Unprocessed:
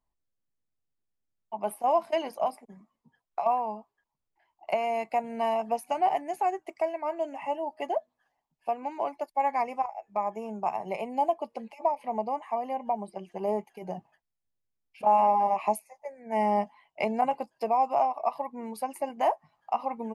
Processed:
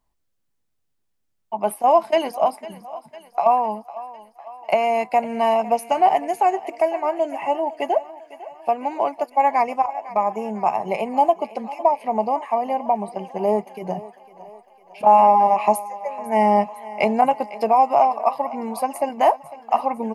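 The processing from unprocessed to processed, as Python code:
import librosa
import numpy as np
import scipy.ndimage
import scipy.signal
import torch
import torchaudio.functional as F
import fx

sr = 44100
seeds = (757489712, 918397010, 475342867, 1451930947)

y = fx.echo_thinned(x, sr, ms=503, feedback_pct=63, hz=340.0, wet_db=-16.5)
y = F.gain(torch.from_numpy(y), 9.0).numpy()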